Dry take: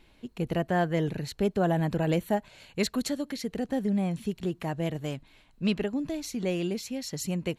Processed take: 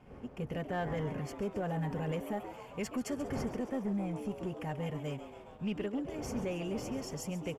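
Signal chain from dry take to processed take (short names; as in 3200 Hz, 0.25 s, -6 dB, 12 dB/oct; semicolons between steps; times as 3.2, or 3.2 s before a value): wind noise 420 Hz -43 dBFS; Butterworth band-stop 3900 Hz, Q 2.4; high shelf 6700 Hz -6.5 dB; notch comb 330 Hz; limiter -21.5 dBFS, peak gain reduction 6 dB; frequency-shifting echo 0.136 s, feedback 62%, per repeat +120 Hz, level -12.5 dB; sample leveller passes 1; bell 180 Hz -4 dB 0.21 oct; gain -7 dB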